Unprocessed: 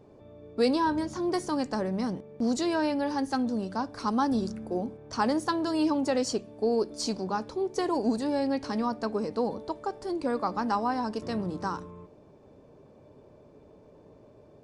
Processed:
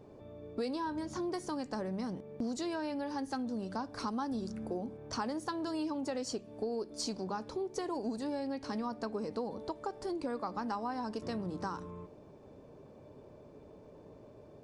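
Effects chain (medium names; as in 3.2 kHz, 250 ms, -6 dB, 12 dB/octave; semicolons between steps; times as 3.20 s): compression 4:1, threshold -35 dBFS, peak gain reduction 13 dB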